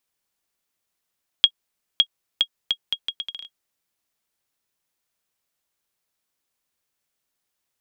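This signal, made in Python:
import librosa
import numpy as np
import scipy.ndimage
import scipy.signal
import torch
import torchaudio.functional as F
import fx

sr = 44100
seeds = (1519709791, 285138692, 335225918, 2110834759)

y = fx.bouncing_ball(sr, first_gap_s=0.56, ratio=0.73, hz=3280.0, decay_ms=66.0, level_db=-2.0)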